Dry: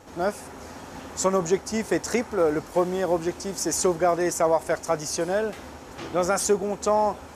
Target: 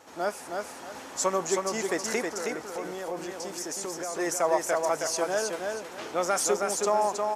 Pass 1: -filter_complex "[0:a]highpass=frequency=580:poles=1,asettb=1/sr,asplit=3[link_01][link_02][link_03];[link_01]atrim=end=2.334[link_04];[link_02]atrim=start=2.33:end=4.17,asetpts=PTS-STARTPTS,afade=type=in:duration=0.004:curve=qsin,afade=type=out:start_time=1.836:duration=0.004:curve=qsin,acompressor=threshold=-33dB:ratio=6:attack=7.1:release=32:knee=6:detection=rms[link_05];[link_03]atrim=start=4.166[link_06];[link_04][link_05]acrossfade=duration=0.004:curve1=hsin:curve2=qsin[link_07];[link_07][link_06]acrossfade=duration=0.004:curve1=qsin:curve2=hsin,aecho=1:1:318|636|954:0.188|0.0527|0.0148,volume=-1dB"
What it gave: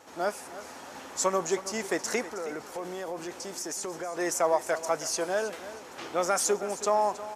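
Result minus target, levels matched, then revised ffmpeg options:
echo-to-direct −10.5 dB
-filter_complex "[0:a]highpass=frequency=580:poles=1,asettb=1/sr,asplit=3[link_01][link_02][link_03];[link_01]atrim=end=2.334[link_04];[link_02]atrim=start=2.33:end=4.17,asetpts=PTS-STARTPTS,afade=type=in:duration=0.004:curve=qsin,afade=type=out:start_time=1.836:duration=0.004:curve=qsin,acompressor=threshold=-33dB:ratio=6:attack=7.1:release=32:knee=6:detection=rms[link_05];[link_03]atrim=start=4.166[link_06];[link_04][link_05]acrossfade=duration=0.004:curve1=hsin:curve2=qsin[link_07];[link_07][link_06]acrossfade=duration=0.004:curve1=qsin:curve2=hsin,aecho=1:1:318|636|954|1272:0.631|0.177|0.0495|0.0139,volume=-1dB"

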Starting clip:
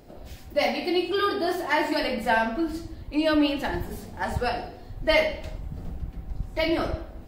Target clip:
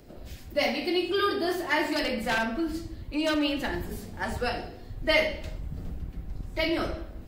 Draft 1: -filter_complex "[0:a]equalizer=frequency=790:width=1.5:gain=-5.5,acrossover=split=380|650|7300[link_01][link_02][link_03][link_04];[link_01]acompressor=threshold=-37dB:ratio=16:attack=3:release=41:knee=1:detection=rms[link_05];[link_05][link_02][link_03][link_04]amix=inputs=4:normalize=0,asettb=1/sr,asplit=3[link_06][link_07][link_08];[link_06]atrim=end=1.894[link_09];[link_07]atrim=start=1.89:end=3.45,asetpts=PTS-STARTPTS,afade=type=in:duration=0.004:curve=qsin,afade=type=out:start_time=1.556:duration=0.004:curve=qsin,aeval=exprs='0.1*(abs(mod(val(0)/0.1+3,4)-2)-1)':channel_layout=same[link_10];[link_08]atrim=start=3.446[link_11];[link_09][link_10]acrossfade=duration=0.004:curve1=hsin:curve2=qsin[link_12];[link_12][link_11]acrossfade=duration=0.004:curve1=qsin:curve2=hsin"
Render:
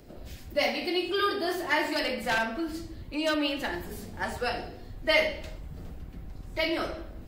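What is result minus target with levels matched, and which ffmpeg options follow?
downward compressor: peak gain reduction +7 dB
-filter_complex "[0:a]equalizer=frequency=790:width=1.5:gain=-5.5,acrossover=split=380|650|7300[link_01][link_02][link_03][link_04];[link_01]acompressor=threshold=-29.5dB:ratio=16:attack=3:release=41:knee=1:detection=rms[link_05];[link_05][link_02][link_03][link_04]amix=inputs=4:normalize=0,asettb=1/sr,asplit=3[link_06][link_07][link_08];[link_06]atrim=end=1.894[link_09];[link_07]atrim=start=1.89:end=3.45,asetpts=PTS-STARTPTS,afade=type=in:duration=0.004:curve=qsin,afade=type=out:start_time=1.556:duration=0.004:curve=qsin,aeval=exprs='0.1*(abs(mod(val(0)/0.1+3,4)-2)-1)':channel_layout=same[link_10];[link_08]atrim=start=3.446[link_11];[link_09][link_10]acrossfade=duration=0.004:curve1=hsin:curve2=qsin[link_12];[link_12][link_11]acrossfade=duration=0.004:curve1=qsin:curve2=hsin"

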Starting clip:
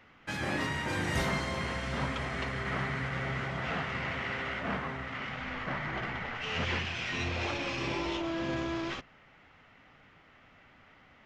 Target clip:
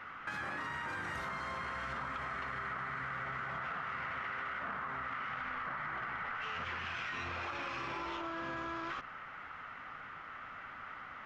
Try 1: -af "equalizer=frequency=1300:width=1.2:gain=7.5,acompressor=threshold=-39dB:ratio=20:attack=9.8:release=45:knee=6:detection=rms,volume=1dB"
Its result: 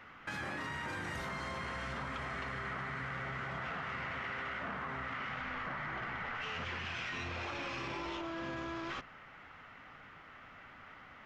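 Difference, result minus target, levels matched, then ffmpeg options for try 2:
1,000 Hz band −2.5 dB
-af "equalizer=frequency=1300:width=1.2:gain=17,acompressor=threshold=-39dB:ratio=20:attack=9.8:release=45:knee=6:detection=rms,volume=1dB"

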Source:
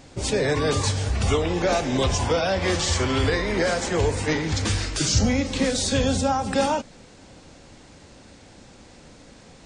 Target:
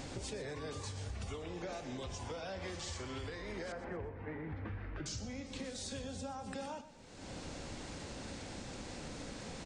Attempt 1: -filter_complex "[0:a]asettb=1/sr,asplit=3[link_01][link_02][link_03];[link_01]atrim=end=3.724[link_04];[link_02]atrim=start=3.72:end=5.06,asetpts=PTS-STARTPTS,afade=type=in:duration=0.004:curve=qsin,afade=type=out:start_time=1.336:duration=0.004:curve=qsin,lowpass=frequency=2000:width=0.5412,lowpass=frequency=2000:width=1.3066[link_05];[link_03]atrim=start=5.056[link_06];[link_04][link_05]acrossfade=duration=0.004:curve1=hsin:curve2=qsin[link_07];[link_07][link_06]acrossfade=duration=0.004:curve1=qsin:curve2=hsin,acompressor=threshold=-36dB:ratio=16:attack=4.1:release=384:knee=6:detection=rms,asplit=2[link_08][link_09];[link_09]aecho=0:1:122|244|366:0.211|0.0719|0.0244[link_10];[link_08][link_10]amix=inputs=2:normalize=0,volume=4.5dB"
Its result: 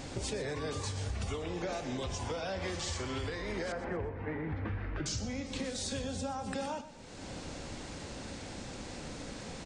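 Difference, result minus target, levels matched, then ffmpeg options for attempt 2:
downward compressor: peak gain reduction −6 dB
-filter_complex "[0:a]asettb=1/sr,asplit=3[link_01][link_02][link_03];[link_01]atrim=end=3.724[link_04];[link_02]atrim=start=3.72:end=5.06,asetpts=PTS-STARTPTS,afade=type=in:duration=0.004:curve=qsin,afade=type=out:start_time=1.336:duration=0.004:curve=qsin,lowpass=frequency=2000:width=0.5412,lowpass=frequency=2000:width=1.3066[link_05];[link_03]atrim=start=5.056[link_06];[link_04][link_05]acrossfade=duration=0.004:curve1=hsin:curve2=qsin[link_07];[link_07][link_06]acrossfade=duration=0.004:curve1=qsin:curve2=hsin,acompressor=threshold=-42.5dB:ratio=16:attack=4.1:release=384:knee=6:detection=rms,asplit=2[link_08][link_09];[link_09]aecho=0:1:122|244|366:0.211|0.0719|0.0244[link_10];[link_08][link_10]amix=inputs=2:normalize=0,volume=4.5dB"

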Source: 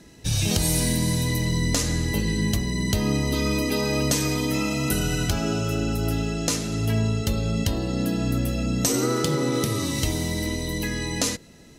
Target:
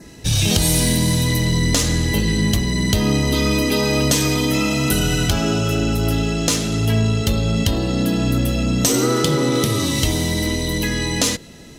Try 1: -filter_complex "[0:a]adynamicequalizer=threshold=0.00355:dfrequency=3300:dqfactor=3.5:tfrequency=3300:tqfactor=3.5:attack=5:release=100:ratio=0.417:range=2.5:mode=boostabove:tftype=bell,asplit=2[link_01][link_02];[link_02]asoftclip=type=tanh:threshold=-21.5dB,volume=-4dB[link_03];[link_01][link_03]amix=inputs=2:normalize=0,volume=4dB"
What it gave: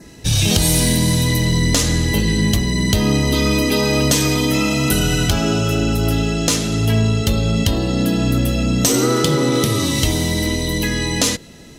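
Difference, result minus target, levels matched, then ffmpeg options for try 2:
soft clipping: distortion −6 dB
-filter_complex "[0:a]adynamicequalizer=threshold=0.00355:dfrequency=3300:dqfactor=3.5:tfrequency=3300:tqfactor=3.5:attack=5:release=100:ratio=0.417:range=2.5:mode=boostabove:tftype=bell,asplit=2[link_01][link_02];[link_02]asoftclip=type=tanh:threshold=-30.5dB,volume=-4dB[link_03];[link_01][link_03]amix=inputs=2:normalize=0,volume=4dB"

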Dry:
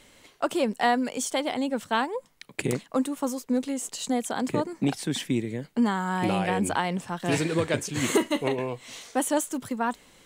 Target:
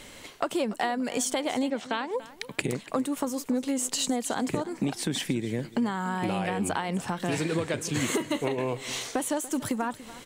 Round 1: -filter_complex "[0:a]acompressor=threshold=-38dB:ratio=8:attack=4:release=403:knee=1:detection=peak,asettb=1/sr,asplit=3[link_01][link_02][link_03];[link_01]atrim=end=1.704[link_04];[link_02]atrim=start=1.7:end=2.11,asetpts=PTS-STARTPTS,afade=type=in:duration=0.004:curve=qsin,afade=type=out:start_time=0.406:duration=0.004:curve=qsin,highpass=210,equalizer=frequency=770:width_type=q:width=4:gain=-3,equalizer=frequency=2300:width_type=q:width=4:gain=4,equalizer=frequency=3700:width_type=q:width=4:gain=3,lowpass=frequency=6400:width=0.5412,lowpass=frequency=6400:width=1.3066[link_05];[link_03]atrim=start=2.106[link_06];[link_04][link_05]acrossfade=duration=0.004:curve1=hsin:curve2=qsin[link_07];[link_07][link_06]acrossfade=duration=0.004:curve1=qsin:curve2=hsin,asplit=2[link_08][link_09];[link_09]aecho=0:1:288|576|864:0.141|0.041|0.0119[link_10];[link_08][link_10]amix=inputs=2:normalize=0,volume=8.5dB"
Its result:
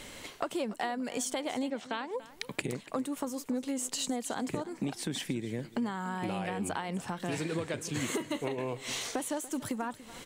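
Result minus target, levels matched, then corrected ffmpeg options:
downward compressor: peak gain reduction +5.5 dB
-filter_complex "[0:a]acompressor=threshold=-31.5dB:ratio=8:attack=4:release=403:knee=1:detection=peak,asettb=1/sr,asplit=3[link_01][link_02][link_03];[link_01]atrim=end=1.704[link_04];[link_02]atrim=start=1.7:end=2.11,asetpts=PTS-STARTPTS,afade=type=in:duration=0.004:curve=qsin,afade=type=out:start_time=0.406:duration=0.004:curve=qsin,highpass=210,equalizer=frequency=770:width_type=q:width=4:gain=-3,equalizer=frequency=2300:width_type=q:width=4:gain=4,equalizer=frequency=3700:width_type=q:width=4:gain=3,lowpass=frequency=6400:width=0.5412,lowpass=frequency=6400:width=1.3066[link_05];[link_03]atrim=start=2.106[link_06];[link_04][link_05]acrossfade=duration=0.004:curve1=hsin:curve2=qsin[link_07];[link_07][link_06]acrossfade=duration=0.004:curve1=qsin:curve2=hsin,asplit=2[link_08][link_09];[link_09]aecho=0:1:288|576|864:0.141|0.041|0.0119[link_10];[link_08][link_10]amix=inputs=2:normalize=0,volume=8.5dB"

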